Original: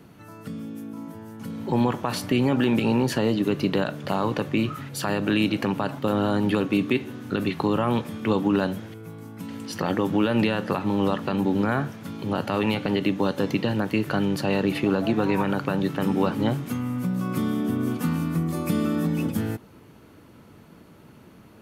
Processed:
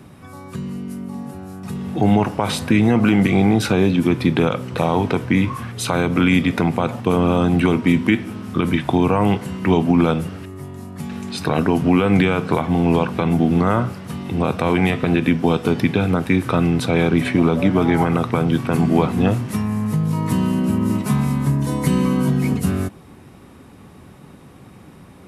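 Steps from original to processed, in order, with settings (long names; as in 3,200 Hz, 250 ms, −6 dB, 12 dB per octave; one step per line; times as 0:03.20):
change of speed 0.855×
level +6.5 dB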